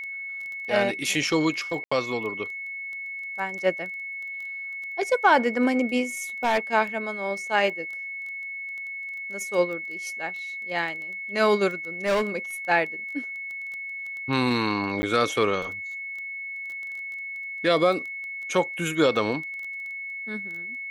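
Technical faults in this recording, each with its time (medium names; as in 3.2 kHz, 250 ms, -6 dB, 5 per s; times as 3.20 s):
crackle 13 per s -33 dBFS
whine 2.2 kHz -32 dBFS
1.84–1.92 s: dropout 75 ms
6.44–6.59 s: clipped -17 dBFS
12.05–12.37 s: clipped -19.5 dBFS
15.02–15.03 s: dropout 10 ms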